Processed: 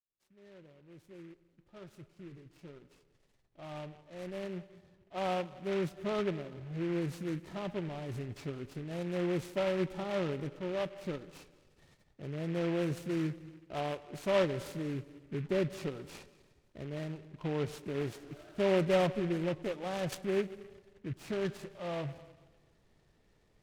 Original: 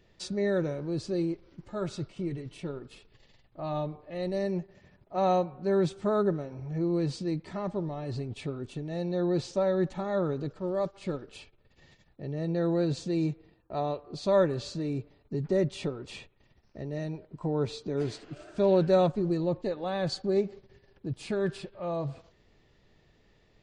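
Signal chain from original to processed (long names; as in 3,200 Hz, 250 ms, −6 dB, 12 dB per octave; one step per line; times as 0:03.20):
fade in at the beginning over 7.74 s
high-shelf EQ 7,100 Hz −10 dB
tape delay 100 ms, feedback 68%, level −23.5 dB, low-pass 5,200 Hz
convolution reverb RT60 1.3 s, pre-delay 151 ms, DRR 18 dB
short delay modulated by noise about 1,800 Hz, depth 0.069 ms
level −5 dB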